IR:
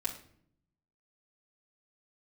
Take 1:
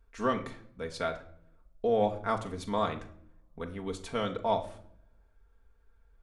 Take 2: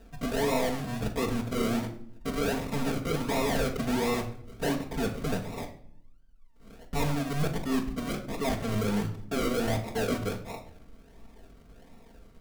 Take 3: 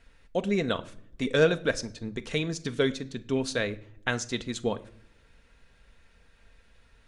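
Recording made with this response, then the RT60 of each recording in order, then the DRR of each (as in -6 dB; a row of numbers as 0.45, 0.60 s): 2; 0.60 s, 0.60 s, not exponential; 2.0, -4.0, 9.0 dB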